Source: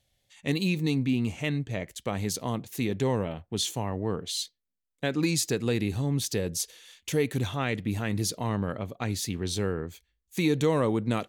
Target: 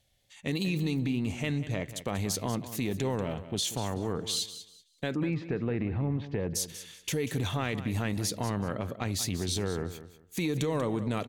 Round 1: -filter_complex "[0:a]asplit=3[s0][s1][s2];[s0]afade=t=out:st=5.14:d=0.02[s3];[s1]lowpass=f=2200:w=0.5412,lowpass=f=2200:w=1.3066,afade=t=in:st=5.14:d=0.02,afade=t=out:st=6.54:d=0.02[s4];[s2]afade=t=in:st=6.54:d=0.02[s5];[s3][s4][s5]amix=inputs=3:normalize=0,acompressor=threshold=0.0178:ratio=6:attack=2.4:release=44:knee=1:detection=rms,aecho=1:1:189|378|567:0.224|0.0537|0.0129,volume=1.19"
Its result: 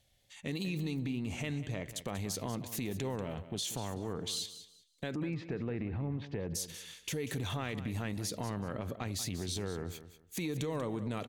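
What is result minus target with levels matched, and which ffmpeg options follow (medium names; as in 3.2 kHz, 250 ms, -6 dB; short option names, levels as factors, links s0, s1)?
compression: peak gain reduction +6 dB
-filter_complex "[0:a]asplit=3[s0][s1][s2];[s0]afade=t=out:st=5.14:d=0.02[s3];[s1]lowpass=f=2200:w=0.5412,lowpass=f=2200:w=1.3066,afade=t=in:st=5.14:d=0.02,afade=t=out:st=6.54:d=0.02[s4];[s2]afade=t=in:st=6.54:d=0.02[s5];[s3][s4][s5]amix=inputs=3:normalize=0,acompressor=threshold=0.0422:ratio=6:attack=2.4:release=44:knee=1:detection=rms,aecho=1:1:189|378|567:0.224|0.0537|0.0129,volume=1.19"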